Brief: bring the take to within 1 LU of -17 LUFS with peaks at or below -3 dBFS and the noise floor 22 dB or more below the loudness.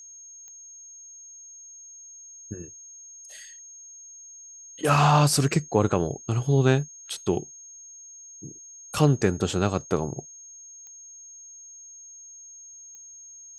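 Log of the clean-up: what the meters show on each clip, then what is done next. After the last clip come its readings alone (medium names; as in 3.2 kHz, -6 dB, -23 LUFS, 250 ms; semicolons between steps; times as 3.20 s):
clicks found 4; steady tone 6.5 kHz; tone level -43 dBFS; loudness -24.0 LUFS; peak level -6.5 dBFS; loudness target -17.0 LUFS
-> de-click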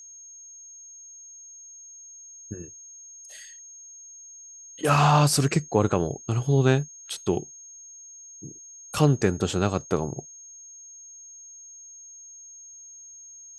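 clicks found 0; steady tone 6.5 kHz; tone level -43 dBFS
-> band-stop 6.5 kHz, Q 30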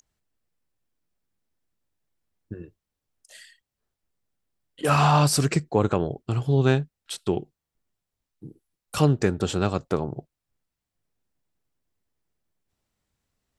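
steady tone not found; loudness -24.0 LUFS; peak level -6.5 dBFS; loudness target -17.0 LUFS
-> trim +7 dB; peak limiter -3 dBFS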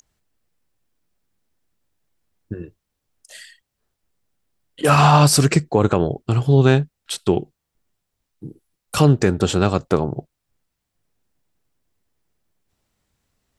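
loudness -17.5 LUFS; peak level -3.0 dBFS; noise floor -79 dBFS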